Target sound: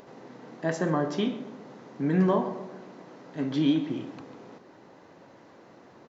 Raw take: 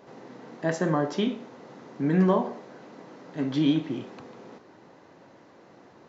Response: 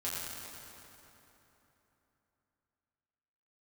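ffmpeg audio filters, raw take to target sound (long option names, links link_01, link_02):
-filter_complex "[0:a]acompressor=mode=upward:threshold=-46dB:ratio=2.5,asplit=2[link_01][link_02];[link_02]adelay=132,lowpass=frequency=1700:poles=1,volume=-12dB,asplit=2[link_03][link_04];[link_04]adelay=132,lowpass=frequency=1700:poles=1,volume=0.54,asplit=2[link_05][link_06];[link_06]adelay=132,lowpass=frequency=1700:poles=1,volume=0.54,asplit=2[link_07][link_08];[link_08]adelay=132,lowpass=frequency=1700:poles=1,volume=0.54,asplit=2[link_09][link_10];[link_10]adelay=132,lowpass=frequency=1700:poles=1,volume=0.54,asplit=2[link_11][link_12];[link_12]adelay=132,lowpass=frequency=1700:poles=1,volume=0.54[link_13];[link_03][link_05][link_07][link_09][link_11][link_13]amix=inputs=6:normalize=0[link_14];[link_01][link_14]amix=inputs=2:normalize=0,volume=-1.5dB"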